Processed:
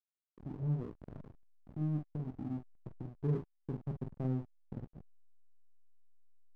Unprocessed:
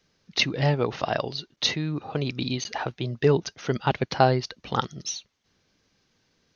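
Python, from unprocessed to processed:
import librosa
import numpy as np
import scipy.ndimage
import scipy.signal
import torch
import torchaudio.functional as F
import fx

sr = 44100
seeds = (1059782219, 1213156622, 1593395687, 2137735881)

y = fx.dynamic_eq(x, sr, hz=260.0, q=0.72, threshold_db=-36.0, ratio=4.0, max_db=-6)
y = fx.ladder_lowpass(y, sr, hz=360.0, resonance_pct=30)
y = fx.comb_fb(y, sr, f0_hz=51.0, decay_s=0.2, harmonics='all', damping=0.0, mix_pct=80)
y = fx.room_early_taps(y, sr, ms=(27, 46), db=(-17.5, -6.0))
y = fx.backlash(y, sr, play_db=-40.0)
y = y * librosa.db_to_amplitude(3.0)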